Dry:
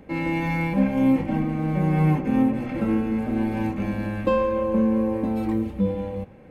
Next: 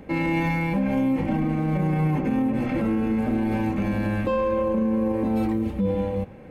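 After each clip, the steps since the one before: limiter -20 dBFS, peak gain reduction 10 dB; gain +4 dB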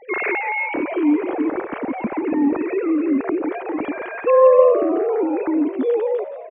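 sine-wave speech; on a send: frequency-shifting echo 0.17 s, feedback 54%, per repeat +73 Hz, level -12.5 dB; on the sum: gain +4 dB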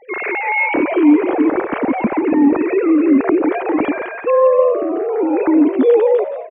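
AGC gain up to 11.5 dB; gain -1 dB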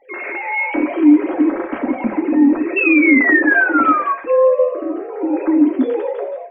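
painted sound fall, 2.76–4.13, 1100–2700 Hz -11 dBFS; reverb RT60 0.30 s, pre-delay 3 ms, DRR 1.5 dB; gain -7 dB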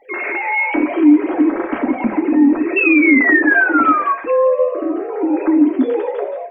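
notch 540 Hz, Q 12; in parallel at 0 dB: compressor, threshold -22 dBFS, peak gain reduction 15 dB; on the sum: gain -1.5 dB

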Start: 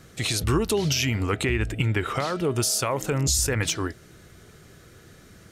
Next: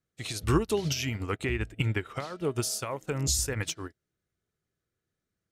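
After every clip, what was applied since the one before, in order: upward expander 2.5:1, over -43 dBFS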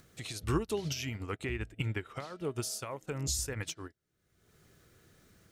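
upward compressor, threshold -33 dBFS; gain -6 dB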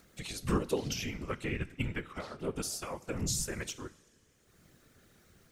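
two-slope reverb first 0.5 s, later 3 s, from -17 dB, DRR 13 dB; whisperiser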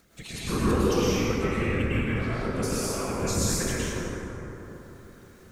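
plate-style reverb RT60 3.7 s, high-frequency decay 0.35×, pre-delay 95 ms, DRR -9 dB

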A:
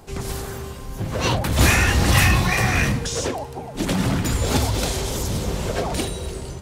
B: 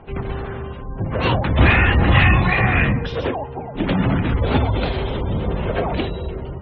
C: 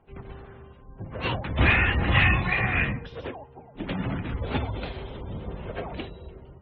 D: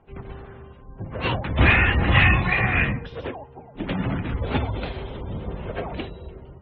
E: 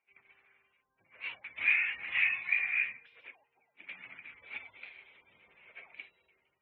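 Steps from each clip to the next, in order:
LPF 3400 Hz 24 dB/oct; spectral gate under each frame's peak -30 dB strong; gain +3 dB
dynamic EQ 2400 Hz, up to +5 dB, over -31 dBFS, Q 0.99; upward expander 1.5:1, over -31 dBFS; gain -7.5 dB
air absorption 64 m; gain +4 dB
band-pass 2300 Hz, Q 9.7; gain -1.5 dB

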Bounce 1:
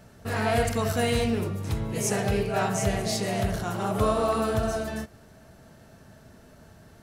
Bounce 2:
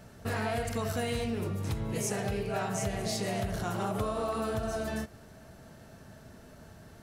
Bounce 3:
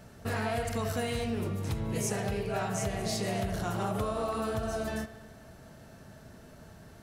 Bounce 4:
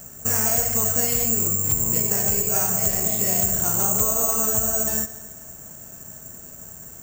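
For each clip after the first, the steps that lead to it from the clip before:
compressor, threshold -29 dBFS, peak gain reduction 10 dB
analogue delay 73 ms, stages 2048, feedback 75%, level -17 dB
careless resampling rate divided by 6×, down filtered, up zero stuff; gain +3 dB

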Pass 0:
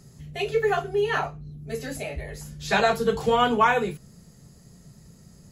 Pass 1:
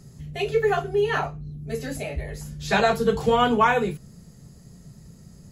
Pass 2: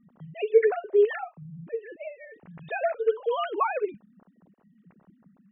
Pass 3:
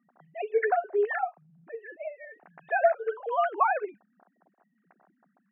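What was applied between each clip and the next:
low shelf 340 Hz +4.5 dB
sine-wave speech; gain -3.5 dB
speaker cabinet 440–2200 Hz, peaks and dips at 470 Hz -6 dB, 730 Hz +9 dB, 1600 Hz +6 dB

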